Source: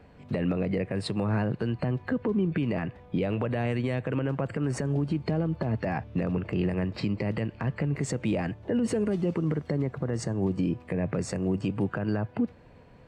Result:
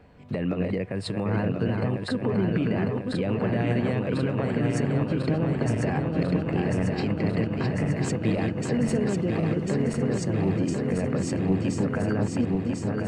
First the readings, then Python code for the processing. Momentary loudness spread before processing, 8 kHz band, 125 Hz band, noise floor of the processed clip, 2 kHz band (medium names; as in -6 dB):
3 LU, +3.5 dB, +3.5 dB, -33 dBFS, +3.5 dB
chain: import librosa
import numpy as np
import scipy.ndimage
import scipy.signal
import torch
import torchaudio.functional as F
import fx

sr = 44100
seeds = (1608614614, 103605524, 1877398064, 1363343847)

y = fx.reverse_delay_fb(x, sr, ms=523, feedback_pct=83, wet_db=-4.0)